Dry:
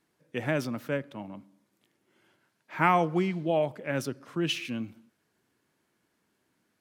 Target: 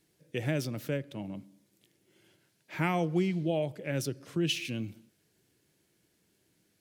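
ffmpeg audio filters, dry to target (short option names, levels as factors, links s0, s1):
-filter_complex "[0:a]equalizer=f=240:t=o:w=0.33:g=-9.5,asplit=2[s0][s1];[s1]acompressor=threshold=0.0141:ratio=6,volume=1.26[s2];[s0][s2]amix=inputs=2:normalize=0,equalizer=f=1100:t=o:w=1.7:g=-14.5"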